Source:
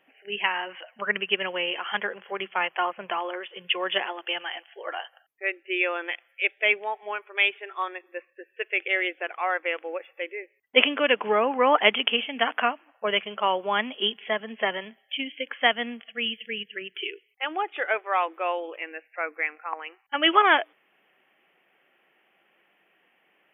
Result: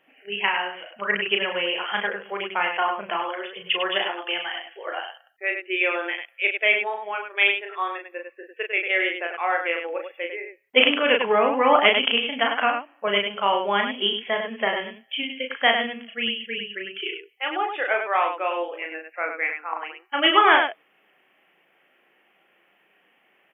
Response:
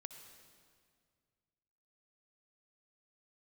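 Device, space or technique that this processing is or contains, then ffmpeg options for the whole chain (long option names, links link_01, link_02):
slapback doubling: -filter_complex "[0:a]asplit=3[link_01][link_02][link_03];[link_02]adelay=35,volume=-4dB[link_04];[link_03]adelay=100,volume=-6.5dB[link_05];[link_01][link_04][link_05]amix=inputs=3:normalize=0,volume=1dB"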